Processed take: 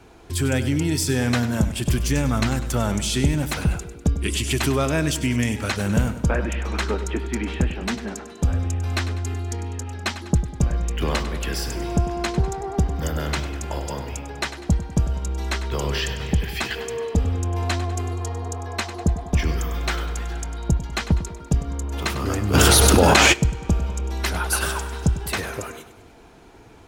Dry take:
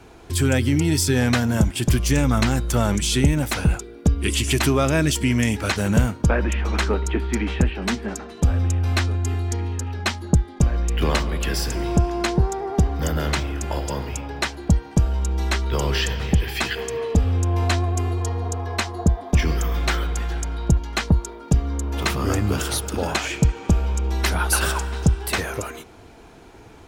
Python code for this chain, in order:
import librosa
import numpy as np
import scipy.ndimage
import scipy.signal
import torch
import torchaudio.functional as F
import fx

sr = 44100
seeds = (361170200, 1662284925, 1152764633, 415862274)

p1 = x + fx.echo_feedback(x, sr, ms=99, feedback_pct=50, wet_db=-13.0, dry=0)
p2 = fx.env_flatten(p1, sr, amount_pct=100, at=(22.53, 23.32), fade=0.02)
y = p2 * 10.0 ** (-2.5 / 20.0)